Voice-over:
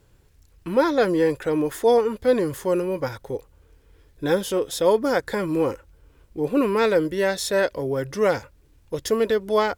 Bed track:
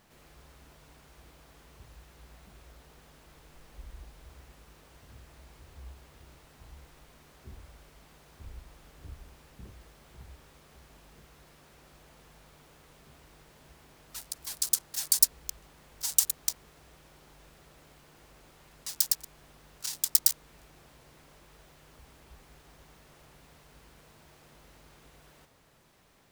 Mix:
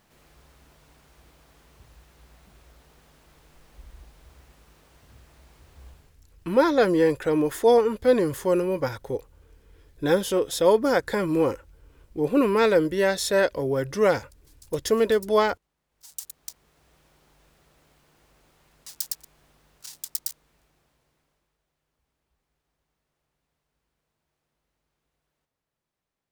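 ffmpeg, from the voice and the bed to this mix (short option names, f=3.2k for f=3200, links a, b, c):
-filter_complex "[0:a]adelay=5800,volume=0dB[a];[1:a]volume=18dB,afade=t=out:st=5.87:d=0.3:silence=0.0749894,afade=t=in:st=15.88:d=1.1:silence=0.11885,afade=t=out:st=19.45:d=2.13:silence=0.11885[b];[a][b]amix=inputs=2:normalize=0"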